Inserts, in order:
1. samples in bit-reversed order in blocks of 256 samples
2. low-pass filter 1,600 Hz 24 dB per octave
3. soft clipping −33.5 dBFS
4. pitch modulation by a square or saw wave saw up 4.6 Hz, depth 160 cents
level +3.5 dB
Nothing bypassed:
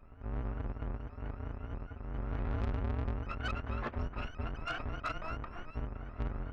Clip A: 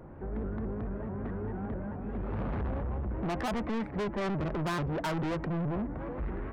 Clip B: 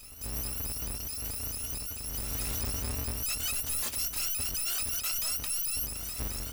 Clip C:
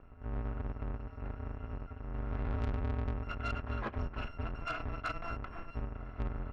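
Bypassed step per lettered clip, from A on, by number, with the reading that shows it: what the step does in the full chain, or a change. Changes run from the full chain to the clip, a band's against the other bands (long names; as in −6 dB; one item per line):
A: 1, 250 Hz band +7.0 dB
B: 2, 4 kHz band +19.0 dB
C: 4, 4 kHz band −2.0 dB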